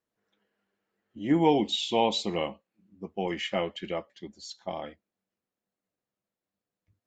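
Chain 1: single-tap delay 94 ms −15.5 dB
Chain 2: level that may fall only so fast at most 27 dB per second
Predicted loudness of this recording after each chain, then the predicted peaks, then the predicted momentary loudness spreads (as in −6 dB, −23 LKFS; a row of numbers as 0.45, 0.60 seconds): −28.5, −27.0 LKFS; −10.0, −9.5 dBFS; 20, 17 LU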